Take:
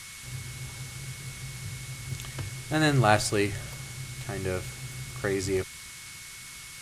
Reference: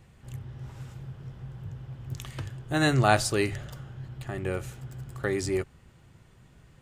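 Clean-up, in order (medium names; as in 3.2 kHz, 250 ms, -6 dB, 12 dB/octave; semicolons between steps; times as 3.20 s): band-stop 2.2 kHz, Q 30; noise print and reduce 12 dB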